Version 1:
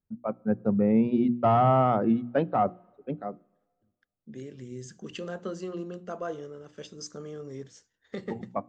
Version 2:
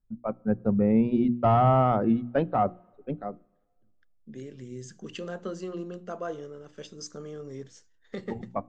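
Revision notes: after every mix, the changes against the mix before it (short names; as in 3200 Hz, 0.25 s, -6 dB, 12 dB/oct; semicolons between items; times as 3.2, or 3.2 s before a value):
first voice: remove HPF 120 Hz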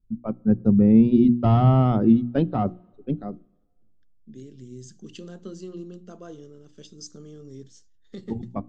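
first voice +7.5 dB; master: add band shelf 1100 Hz -11 dB 2.7 oct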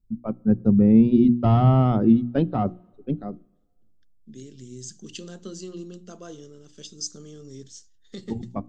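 second voice: add high shelf 3000 Hz +12 dB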